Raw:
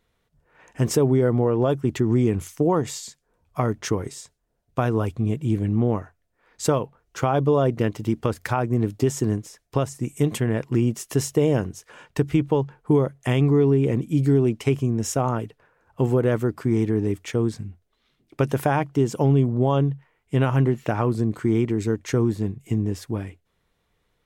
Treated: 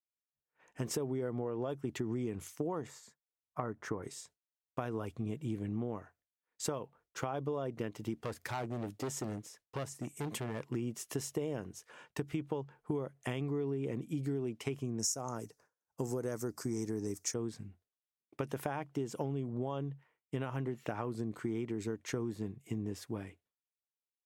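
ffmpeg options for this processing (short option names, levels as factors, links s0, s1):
-filter_complex "[0:a]asettb=1/sr,asplit=3[s0][s1][s2];[s0]atrim=end=2.874[s3];[s1]atrim=start=2.87:end=4.03,asetpts=PTS-STARTPTS,afade=t=in:d=0.004:c=qsin,afade=t=out:st=1.156:d=0.004:c=qsin,highshelf=f=2200:t=q:w=1.5:g=-11[s4];[s2]atrim=start=4.026[s5];[s3][s4]acrossfade=d=0.004:c1=hsin:c2=qsin[s6];[s6][s5]acrossfade=d=0.004:c1=qsin:c2=hsin,asettb=1/sr,asplit=3[s7][s8][s9];[s7]atrim=end=8.174[s10];[s8]atrim=start=8.17:end=10.7,asetpts=PTS-STARTPTS,afade=t=in:d=0.004:c=qsin,afade=t=out:st=2.526:d=0.004:c=qsin,asoftclip=type=hard:threshold=0.075[s11];[s9]atrim=start=10.696[s12];[s10][s11]acrossfade=d=0.004:c1=hsin:c2=qsin[s13];[s13][s12]acrossfade=d=0.004:c1=qsin:c2=hsin,asettb=1/sr,asplit=3[s14][s15][s16];[s14]atrim=end=14.994[s17];[s15]atrim=start=14.99:end=17.34,asetpts=PTS-STARTPTS,afade=t=in:d=0.004:c=qsin,afade=t=out:st=2.346:d=0.004:c=qsin,highshelf=f=4300:t=q:w=3:g=11[s18];[s16]atrim=start=17.336[s19];[s17][s18]acrossfade=d=0.004:c1=hsin:c2=qsin[s20];[s20][s19]acrossfade=d=0.004:c1=qsin:c2=hsin,agate=range=0.0224:threshold=0.00447:ratio=3:detection=peak,highpass=f=180:p=1,acompressor=threshold=0.0631:ratio=6,volume=0.376"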